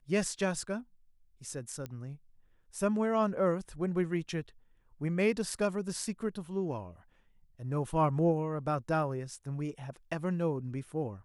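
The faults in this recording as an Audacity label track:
1.860000	1.860000	pop -26 dBFS

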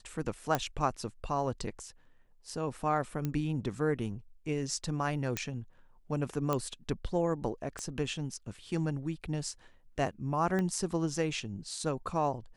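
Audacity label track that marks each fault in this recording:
0.550000	0.550000	pop -14 dBFS
3.250000	3.250000	pop -20 dBFS
5.370000	5.370000	pop -15 dBFS
6.530000	6.530000	pop -17 dBFS
7.790000	7.790000	pop -24 dBFS
10.590000	10.590000	pop -21 dBFS

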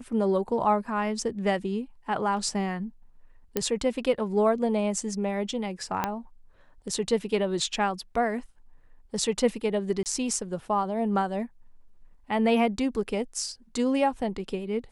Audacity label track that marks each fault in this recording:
3.570000	3.570000	pop -11 dBFS
6.040000	6.040000	pop -11 dBFS
10.030000	10.060000	dropout 28 ms

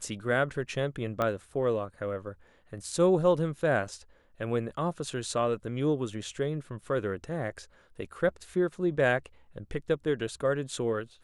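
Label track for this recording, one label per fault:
1.220000	1.220000	pop -16 dBFS

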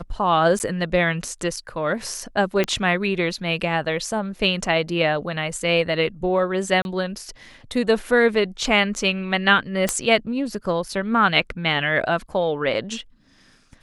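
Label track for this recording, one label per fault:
0.590000	0.600000	dropout 9.5 ms
2.640000	2.640000	pop -8 dBFS
6.820000	6.850000	dropout 31 ms
9.890000	9.890000	pop -5 dBFS

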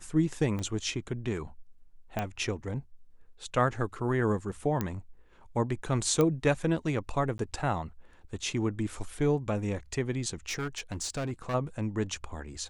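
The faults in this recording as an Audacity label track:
0.590000	0.590000	pop -23 dBFS
2.190000	2.190000	pop -17 dBFS
4.810000	4.810000	pop -16 dBFS
6.210000	6.210000	pop -14 dBFS
7.380000	7.390000	dropout
10.480000	11.550000	clipped -29 dBFS

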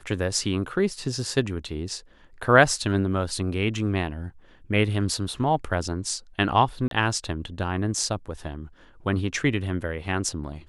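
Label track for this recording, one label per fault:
6.880000	6.910000	dropout 32 ms

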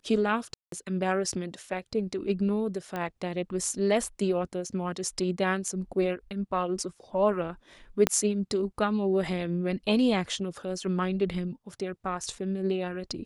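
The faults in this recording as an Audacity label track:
0.540000	0.720000	dropout 183 ms
2.960000	2.960000	pop -20 dBFS
8.070000	8.070000	pop -7 dBFS

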